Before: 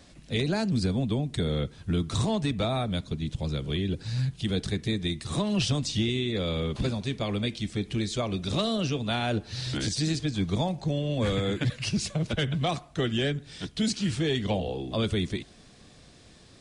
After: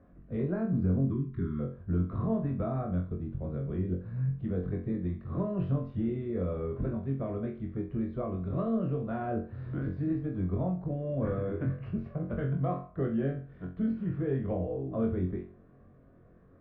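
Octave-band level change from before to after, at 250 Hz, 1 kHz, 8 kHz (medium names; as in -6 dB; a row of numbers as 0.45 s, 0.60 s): -2.5 dB, -6.0 dB, under -40 dB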